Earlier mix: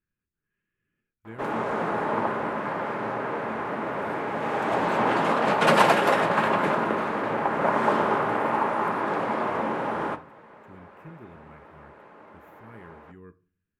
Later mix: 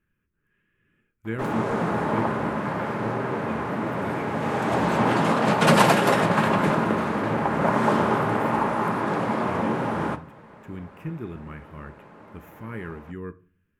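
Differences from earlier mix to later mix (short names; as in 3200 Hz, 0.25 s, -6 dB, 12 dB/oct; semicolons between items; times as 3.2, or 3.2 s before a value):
speech +12.0 dB; background: add tone controls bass +11 dB, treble +7 dB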